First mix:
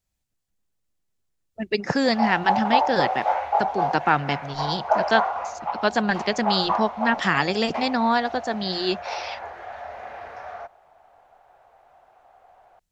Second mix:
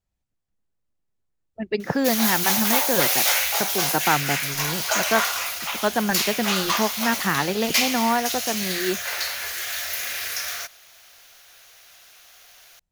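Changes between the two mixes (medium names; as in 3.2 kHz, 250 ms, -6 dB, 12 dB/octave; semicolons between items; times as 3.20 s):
speech: add treble shelf 2.7 kHz -9 dB; background: remove resonant low-pass 810 Hz, resonance Q 4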